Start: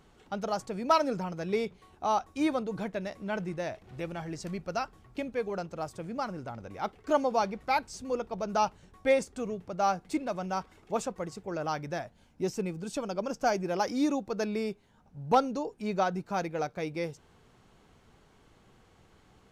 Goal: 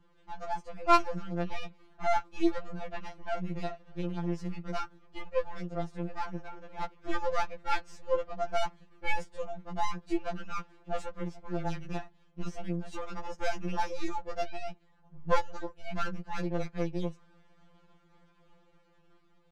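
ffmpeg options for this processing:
ffmpeg -i in.wav -af "aeval=exprs='if(lt(val(0),0),0.251*val(0),val(0))':channel_layout=same,adynamicsmooth=sensitivity=3:basefreq=4700,asetrate=46722,aresample=44100,atempo=0.943874,dynaudnorm=framelen=280:gausssize=7:maxgain=4dB,afftfilt=real='re*2.83*eq(mod(b,8),0)':imag='im*2.83*eq(mod(b,8),0)':win_size=2048:overlap=0.75,volume=-1dB" out.wav

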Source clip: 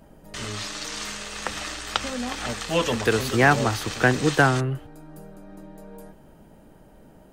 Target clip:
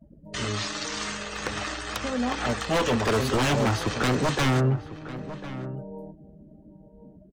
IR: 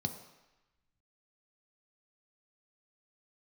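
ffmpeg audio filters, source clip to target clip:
-filter_complex "[0:a]afftdn=noise_reduction=32:noise_floor=-41,highpass=46,asplit=2[link_01][link_02];[link_02]alimiter=limit=-13dB:level=0:latency=1:release=332,volume=0.5dB[link_03];[link_01][link_03]amix=inputs=2:normalize=0,aeval=exprs='0.188*(abs(mod(val(0)/0.188+3,4)-2)-1)':channel_layout=same,asplit=2[link_04][link_05];[link_05]adelay=1050,volume=-13dB,highshelf=frequency=4000:gain=-23.6[link_06];[link_04][link_06]amix=inputs=2:normalize=0,adynamicequalizer=threshold=0.0141:dfrequency=2200:dqfactor=0.7:tfrequency=2200:tqfactor=0.7:attack=5:release=100:ratio=0.375:range=2.5:mode=cutabove:tftype=highshelf,volume=-2dB"

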